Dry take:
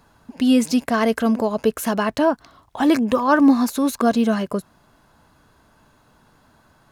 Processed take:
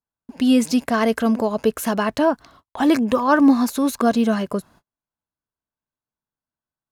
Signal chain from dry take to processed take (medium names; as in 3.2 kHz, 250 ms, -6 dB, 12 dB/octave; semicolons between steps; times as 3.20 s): gate -47 dBFS, range -39 dB